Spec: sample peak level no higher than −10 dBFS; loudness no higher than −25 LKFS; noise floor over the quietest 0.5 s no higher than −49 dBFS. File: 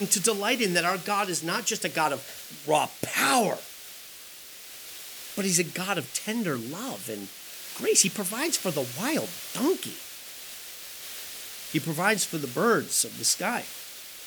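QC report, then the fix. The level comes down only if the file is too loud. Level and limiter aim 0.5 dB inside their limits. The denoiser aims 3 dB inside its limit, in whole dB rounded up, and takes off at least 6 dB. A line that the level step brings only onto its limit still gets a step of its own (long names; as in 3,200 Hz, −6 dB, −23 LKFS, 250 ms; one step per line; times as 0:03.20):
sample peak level −6.5 dBFS: out of spec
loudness −26.5 LKFS: in spec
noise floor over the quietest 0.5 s −45 dBFS: out of spec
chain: broadband denoise 7 dB, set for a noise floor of −45 dBFS
brickwall limiter −10.5 dBFS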